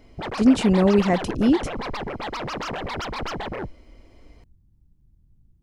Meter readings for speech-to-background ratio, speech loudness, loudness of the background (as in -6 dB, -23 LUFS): 11.0 dB, -20.0 LUFS, -31.0 LUFS